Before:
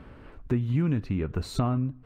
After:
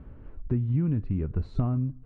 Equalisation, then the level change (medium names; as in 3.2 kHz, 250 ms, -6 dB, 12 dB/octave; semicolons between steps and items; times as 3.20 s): distance through air 120 m; tilt EQ -3 dB/octave; -8.0 dB